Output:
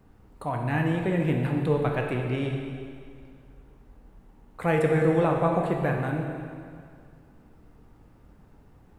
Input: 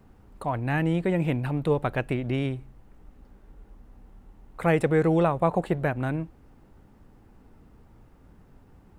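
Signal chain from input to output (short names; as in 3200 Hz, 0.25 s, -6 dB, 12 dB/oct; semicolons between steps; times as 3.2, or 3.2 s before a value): plate-style reverb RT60 2.2 s, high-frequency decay 0.9×, DRR 1 dB; gain -2.5 dB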